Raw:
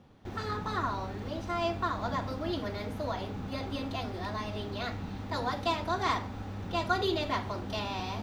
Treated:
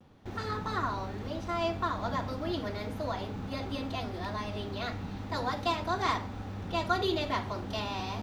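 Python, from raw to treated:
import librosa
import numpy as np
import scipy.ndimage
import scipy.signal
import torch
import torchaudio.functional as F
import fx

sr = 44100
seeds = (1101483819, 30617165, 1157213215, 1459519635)

y = fx.vibrato(x, sr, rate_hz=0.4, depth_cents=25.0)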